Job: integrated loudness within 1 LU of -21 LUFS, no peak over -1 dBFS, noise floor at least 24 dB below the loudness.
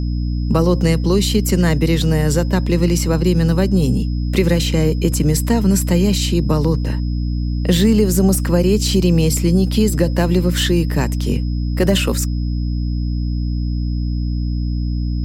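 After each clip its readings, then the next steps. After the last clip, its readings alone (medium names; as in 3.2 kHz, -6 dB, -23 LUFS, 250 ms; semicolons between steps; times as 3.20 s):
hum 60 Hz; highest harmonic 300 Hz; hum level -17 dBFS; steady tone 5.1 kHz; tone level -42 dBFS; loudness -17.5 LUFS; peak level -2.0 dBFS; loudness target -21.0 LUFS
-> hum notches 60/120/180/240/300 Hz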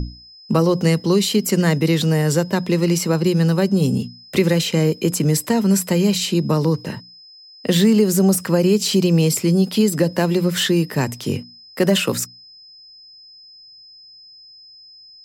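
hum not found; steady tone 5.1 kHz; tone level -42 dBFS
-> band-stop 5.1 kHz, Q 30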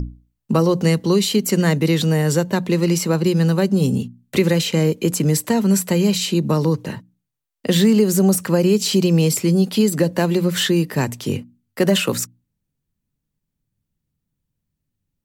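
steady tone not found; loudness -18.0 LUFS; peak level -4.0 dBFS; loudness target -21.0 LUFS
-> trim -3 dB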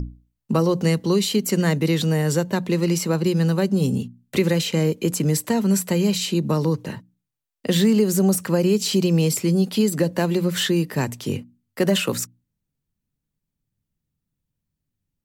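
loudness -21.0 LUFS; peak level -7.0 dBFS; noise floor -82 dBFS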